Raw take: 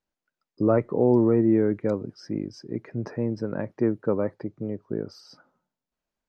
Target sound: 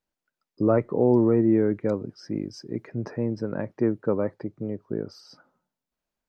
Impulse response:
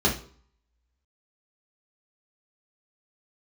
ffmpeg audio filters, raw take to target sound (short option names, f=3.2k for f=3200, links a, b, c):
-filter_complex "[0:a]asettb=1/sr,asplit=3[a][b][c];[a]atrim=end=2.334[d];[b]atrim=start=2.33:end=2.87,asetpts=PTS-STARTPTS,afade=t=in:d=0.004:c=qsin,afade=t=out:st=0.536:d=0.004:c=qsin,highshelf=f=5.3k:g=7[e];[c]atrim=start=2.866[f];[d][e]acrossfade=d=0.004:c1=hsin:c2=qsin[g];[g][f]acrossfade=d=0.004:c1=qsin:c2=hsin"